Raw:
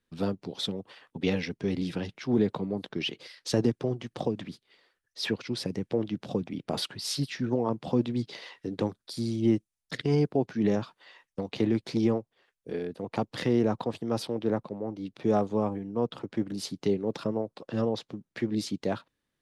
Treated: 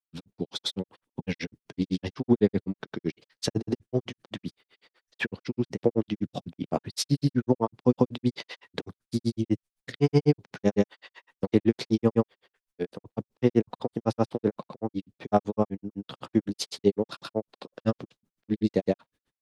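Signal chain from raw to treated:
granular cloud 83 ms, grains 7.9 per second, pitch spread up and down by 0 semitones
level +7 dB

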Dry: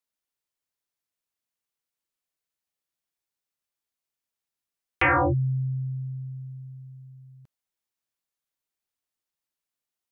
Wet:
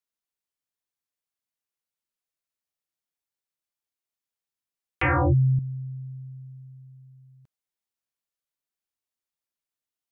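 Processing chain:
0:05.03–0:05.59: low-shelf EQ 250 Hz +11.5 dB
level −4 dB

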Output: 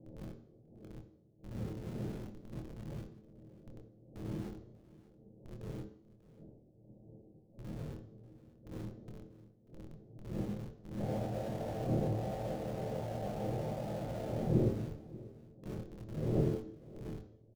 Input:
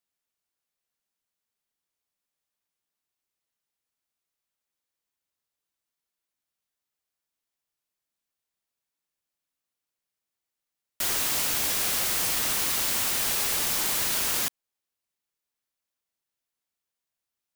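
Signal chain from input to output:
lower of the sound and its delayed copy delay 1.4 ms
wind on the microphone 260 Hz −44 dBFS
Butterworth low-pass 630 Hz 36 dB per octave
spectral tilt +2.5 dB per octave
tuned comb filter 110 Hz, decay 0.24 s, harmonics all, mix 70%
in parallel at −4.5 dB: comparator with hysteresis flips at −59 dBFS
on the sum: double-tracking delay 25 ms −5 dB
single-tap delay 591 ms −19.5 dB
on a send at −7 dB: convolution reverb RT60 0.60 s, pre-delay 3 ms
on the sum: level +9.5 dB

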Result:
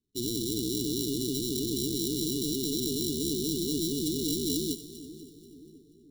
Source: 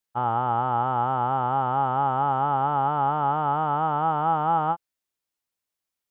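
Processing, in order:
tilt shelving filter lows −6.5 dB, about 740 Hz
sample-rate reduction 1,600 Hz, jitter 0%
linear-phase brick-wall band-stop 450–2,900 Hz
on a send: echo with a time of its own for lows and highs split 910 Hz, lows 528 ms, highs 242 ms, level −14.5 dB
on the sum: level −2.5 dB

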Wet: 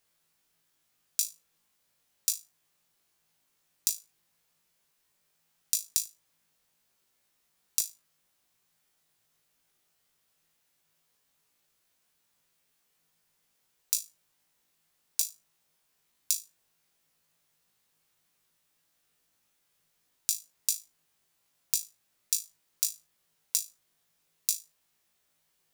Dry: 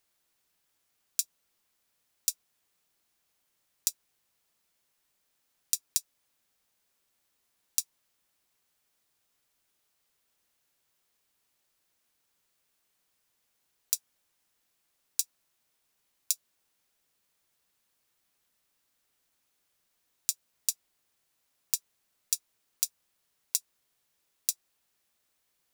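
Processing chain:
parametric band 160 Hz +8 dB 0.21 octaves
on a send: flutter between parallel walls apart 3.2 metres, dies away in 0.24 s

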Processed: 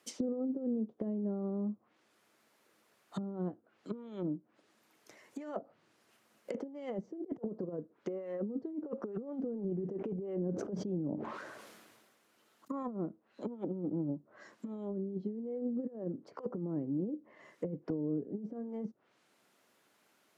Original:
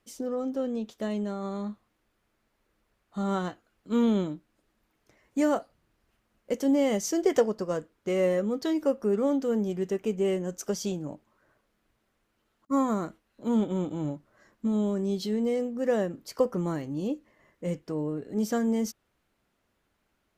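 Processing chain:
compressor whose output falls as the input rises −31 dBFS, ratio −0.5
Bessel high-pass filter 180 Hz, order 8
treble cut that deepens with the level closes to 310 Hz, closed at −32 dBFS
bass and treble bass −5 dB, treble +4 dB
0:09.26–0:12.83: level that may fall only so fast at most 33 dB per second
level +1 dB

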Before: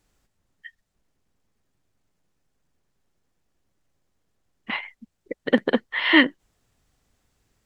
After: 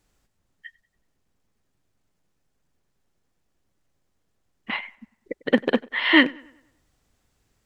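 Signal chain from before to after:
loose part that buzzes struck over −26 dBFS, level −24 dBFS
tape delay 96 ms, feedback 49%, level −22.5 dB, low-pass 3,500 Hz

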